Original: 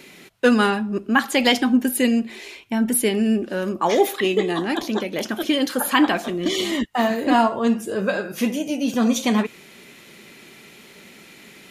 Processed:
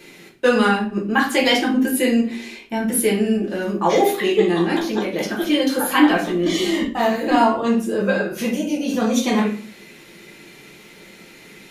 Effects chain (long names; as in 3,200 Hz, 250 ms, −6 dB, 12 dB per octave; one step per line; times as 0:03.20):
rectangular room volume 39 cubic metres, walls mixed, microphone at 0.8 metres
level −3.5 dB